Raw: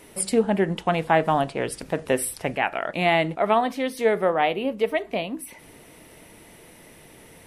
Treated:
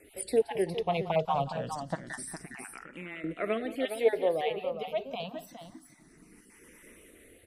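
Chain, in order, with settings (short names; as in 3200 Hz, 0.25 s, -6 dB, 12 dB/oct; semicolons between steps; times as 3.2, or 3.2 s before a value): random spectral dropouts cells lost 23%; rotary speaker horn 5 Hz, later 0.7 Hz, at 2.99; 2.37–3.24 compressor 2.5:1, threshold -40 dBFS, peak gain reduction 14.5 dB; on a send: tapped delay 0.176/0.411 s -16/-8.5 dB; on the sum: endless phaser +0.27 Hz; gain -2.5 dB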